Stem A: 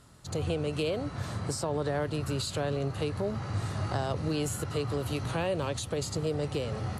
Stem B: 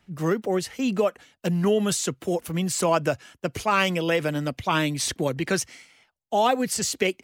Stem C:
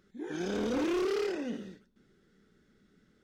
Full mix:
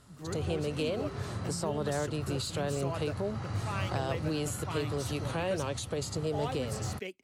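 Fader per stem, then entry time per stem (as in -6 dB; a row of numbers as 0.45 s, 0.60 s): -2.0 dB, -17.0 dB, -16.5 dB; 0.00 s, 0.00 s, 0.00 s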